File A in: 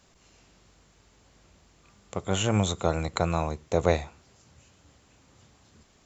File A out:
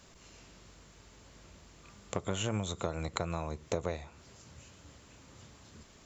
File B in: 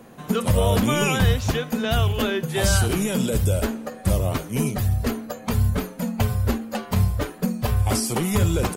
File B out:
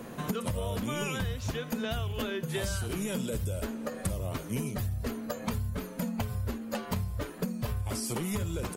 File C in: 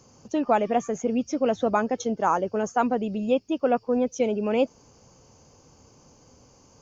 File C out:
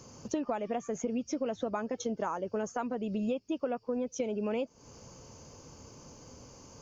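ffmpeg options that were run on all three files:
-af "acompressor=threshold=-33dB:ratio=12,bandreject=frequency=770:width=12,volume=3.5dB"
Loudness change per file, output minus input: −9.0, −11.0, −9.5 LU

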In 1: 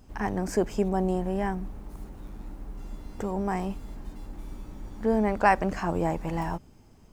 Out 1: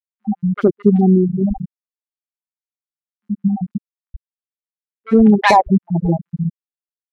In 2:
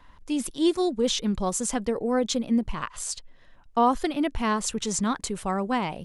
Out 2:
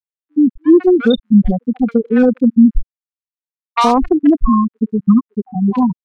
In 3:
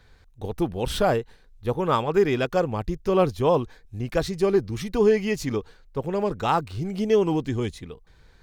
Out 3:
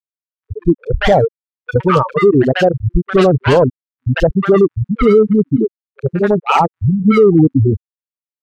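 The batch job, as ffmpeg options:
-filter_complex "[0:a]afftfilt=real='re*gte(hypot(re,im),0.316)':imag='im*gte(hypot(re,im),0.316)':win_size=1024:overlap=0.75,highshelf=frequency=4600:gain=5.5,acrossover=split=420|940[link_01][link_02][link_03];[link_02]acrusher=bits=3:mix=0:aa=0.5[link_04];[link_01][link_04][link_03]amix=inputs=3:normalize=0,acrossover=split=1100|3700[link_05][link_06][link_07];[link_07]adelay=30[link_08];[link_05]adelay=70[link_09];[link_09][link_06][link_08]amix=inputs=3:normalize=0,alimiter=level_in=19dB:limit=-1dB:release=50:level=0:latency=1,volume=-1dB"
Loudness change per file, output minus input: +12.5, +12.5, +11.0 LU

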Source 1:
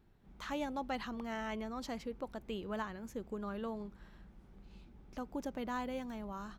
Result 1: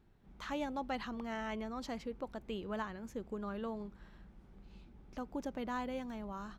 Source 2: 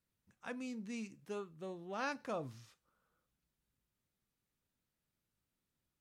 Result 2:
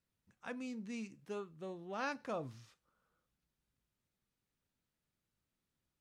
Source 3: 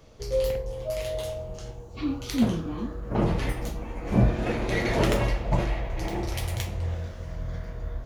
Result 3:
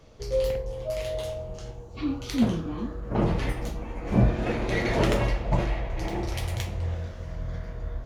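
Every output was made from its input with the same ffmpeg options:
-af "highshelf=frequency=9800:gain=-7.5"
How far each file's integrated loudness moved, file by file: 0.0, 0.0, 0.0 LU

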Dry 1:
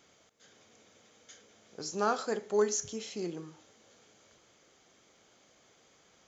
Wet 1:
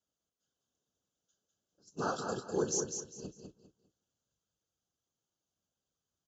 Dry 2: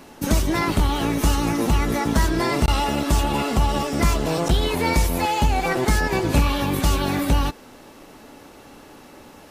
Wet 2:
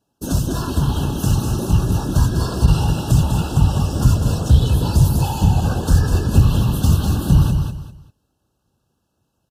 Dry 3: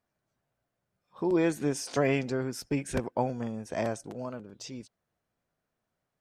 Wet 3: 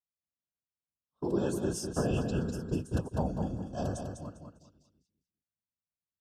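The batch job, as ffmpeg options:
-af "asubboost=boost=2.5:cutoff=140,agate=range=-24dB:threshold=-35dB:ratio=16:detection=peak,bass=frequency=250:gain=8,treble=frequency=4000:gain=6,afftfilt=real='hypot(re,im)*cos(2*PI*random(0))':imag='hypot(re,im)*sin(2*PI*random(1))':win_size=512:overlap=0.75,highpass=46,asoftclip=type=tanh:threshold=-1dB,asuperstop=centerf=2100:order=20:qfactor=2.4,aecho=1:1:200|400|600:0.501|0.13|0.0339"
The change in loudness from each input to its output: −3.0, +3.5, −2.5 LU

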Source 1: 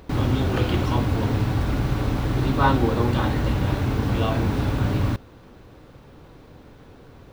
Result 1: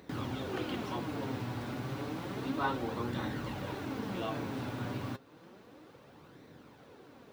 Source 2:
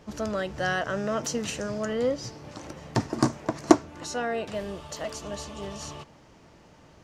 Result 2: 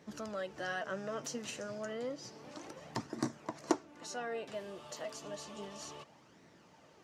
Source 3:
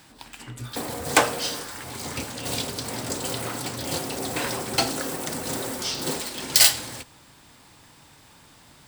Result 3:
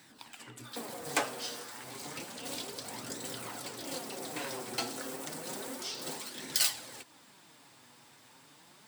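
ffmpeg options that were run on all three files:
-filter_complex "[0:a]highpass=180,asplit=2[link_01][link_02];[link_02]acompressor=threshold=-39dB:ratio=6,volume=2.5dB[link_03];[link_01][link_03]amix=inputs=2:normalize=0,flanger=delay=0.5:depth=7.8:regen=47:speed=0.31:shape=sinusoidal,volume=-9dB"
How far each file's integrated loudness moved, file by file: −14.5, −12.0, −11.5 LU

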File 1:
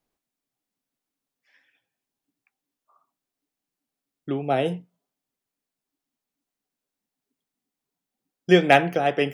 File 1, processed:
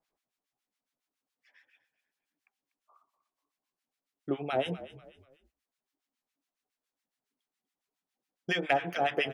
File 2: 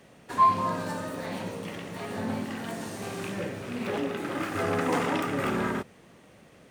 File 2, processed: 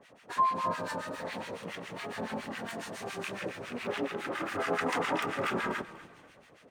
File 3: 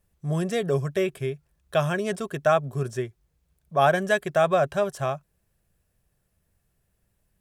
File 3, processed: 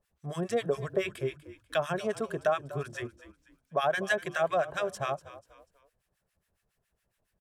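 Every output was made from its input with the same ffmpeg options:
-filter_complex "[0:a]bandreject=frequency=50:width_type=h:width=6,bandreject=frequency=100:width_type=h:width=6,bandreject=frequency=150:width_type=h:width=6,bandreject=frequency=200:width_type=h:width=6,bandreject=frequency=250:width_type=h:width=6,bandreject=frequency=300:width_type=h:width=6,bandreject=frequency=350:width_type=h:width=6,acompressor=threshold=-21dB:ratio=6,acrossover=split=1100[link_01][link_02];[link_01]aeval=exprs='val(0)*(1-1/2+1/2*cos(2*PI*7.2*n/s))':channel_layout=same[link_03];[link_02]aeval=exprs='val(0)*(1-1/2-1/2*cos(2*PI*7.2*n/s))':channel_layout=same[link_04];[link_03][link_04]amix=inputs=2:normalize=0,asplit=4[link_05][link_06][link_07][link_08];[link_06]adelay=244,afreqshift=-40,volume=-16dB[link_09];[link_07]adelay=488,afreqshift=-80,volume=-24.9dB[link_10];[link_08]adelay=732,afreqshift=-120,volume=-33.7dB[link_11];[link_05][link_09][link_10][link_11]amix=inputs=4:normalize=0,asplit=2[link_12][link_13];[link_13]highpass=frequency=720:poles=1,volume=9dB,asoftclip=type=tanh:threshold=-4dB[link_14];[link_12][link_14]amix=inputs=2:normalize=0,lowpass=frequency=4500:poles=1,volume=-6dB"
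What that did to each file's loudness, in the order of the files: −10.5, −4.5, −6.5 LU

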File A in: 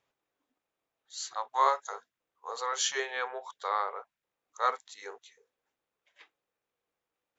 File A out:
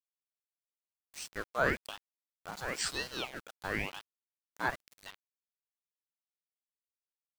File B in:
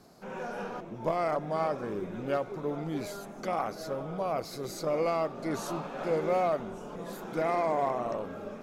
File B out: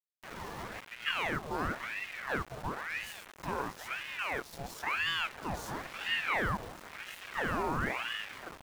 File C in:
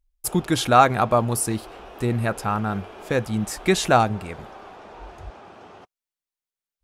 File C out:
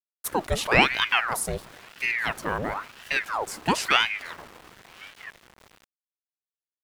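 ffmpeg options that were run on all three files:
-af "aeval=exprs='val(0)*gte(abs(val(0)),0.0112)':channel_layout=same,aeval=exprs='val(0)*sin(2*PI*1300*n/s+1300*0.8/0.98*sin(2*PI*0.98*n/s))':channel_layout=same,volume=-1.5dB"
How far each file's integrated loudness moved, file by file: −4.0, −3.0, −3.0 LU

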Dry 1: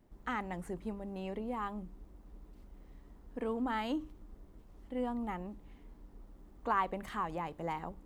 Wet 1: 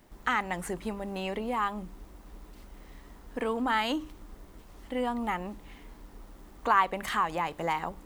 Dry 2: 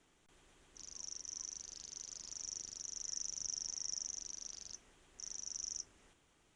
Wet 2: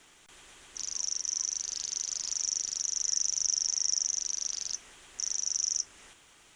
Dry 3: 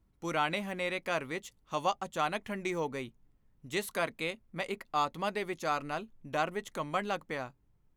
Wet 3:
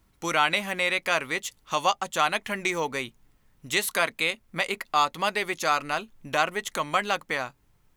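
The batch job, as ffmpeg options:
-filter_complex "[0:a]tiltshelf=frequency=740:gain=-6,asplit=2[link_01][link_02];[link_02]acompressor=threshold=-41dB:ratio=6,volume=0dB[link_03];[link_01][link_03]amix=inputs=2:normalize=0,volume=4.5dB"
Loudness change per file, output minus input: +7.5, +13.5, +8.5 LU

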